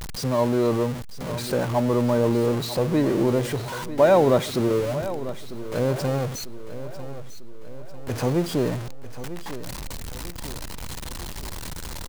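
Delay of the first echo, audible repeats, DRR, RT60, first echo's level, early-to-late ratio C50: 947 ms, 4, no reverb, no reverb, -13.5 dB, no reverb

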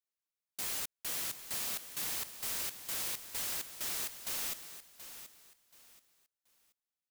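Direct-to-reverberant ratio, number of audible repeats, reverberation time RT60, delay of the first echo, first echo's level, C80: no reverb, 3, no reverb, 729 ms, -12.0 dB, no reverb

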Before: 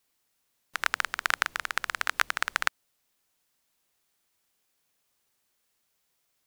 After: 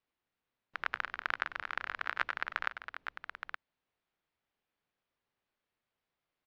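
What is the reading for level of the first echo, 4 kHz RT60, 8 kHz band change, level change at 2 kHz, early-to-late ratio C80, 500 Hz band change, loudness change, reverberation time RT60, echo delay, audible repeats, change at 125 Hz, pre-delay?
-16.5 dB, no reverb, under -25 dB, -7.0 dB, no reverb, -5.0 dB, -9.0 dB, no reverb, 96 ms, 3, no reading, no reverb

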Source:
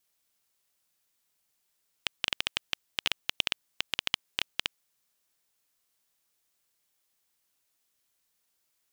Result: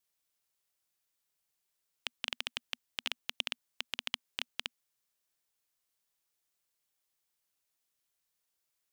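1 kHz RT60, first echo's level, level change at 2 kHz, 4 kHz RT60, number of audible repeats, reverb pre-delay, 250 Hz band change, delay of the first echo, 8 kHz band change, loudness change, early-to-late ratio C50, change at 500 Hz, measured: no reverb, no echo, -6.5 dB, no reverb, no echo, no reverb, -8.0 dB, no echo, -6.5 dB, -6.5 dB, no reverb, -6.5 dB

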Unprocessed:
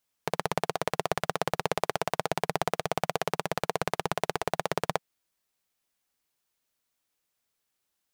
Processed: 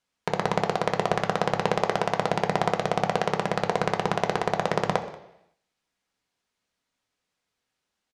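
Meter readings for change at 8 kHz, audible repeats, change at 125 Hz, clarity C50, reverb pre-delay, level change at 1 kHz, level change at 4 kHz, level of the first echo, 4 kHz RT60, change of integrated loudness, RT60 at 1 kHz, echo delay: -2.0 dB, 1, +6.5 dB, 11.0 dB, 3 ms, +5.0 dB, +2.0 dB, -20.5 dB, 0.85 s, +5.0 dB, 0.80 s, 185 ms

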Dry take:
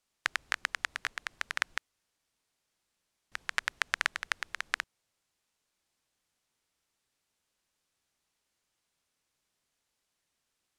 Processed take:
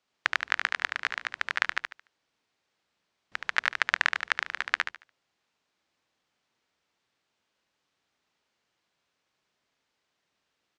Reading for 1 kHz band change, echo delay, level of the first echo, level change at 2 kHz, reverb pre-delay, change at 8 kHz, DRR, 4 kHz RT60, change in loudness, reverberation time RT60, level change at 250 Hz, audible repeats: +6.0 dB, 73 ms, -6.0 dB, +6.0 dB, no reverb, -3.0 dB, no reverb, no reverb, +5.5 dB, no reverb, +5.5 dB, 3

